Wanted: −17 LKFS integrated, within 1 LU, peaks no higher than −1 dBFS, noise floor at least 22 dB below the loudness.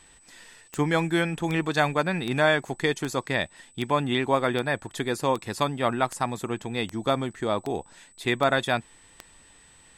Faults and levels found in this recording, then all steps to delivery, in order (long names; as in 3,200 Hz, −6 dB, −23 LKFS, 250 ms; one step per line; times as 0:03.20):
number of clicks 13; interfering tone 8,000 Hz; level of the tone −55 dBFS; integrated loudness −26.5 LKFS; sample peak −8.5 dBFS; target loudness −17.0 LKFS
→ click removal
notch filter 8,000 Hz, Q 30
level +9.5 dB
brickwall limiter −1 dBFS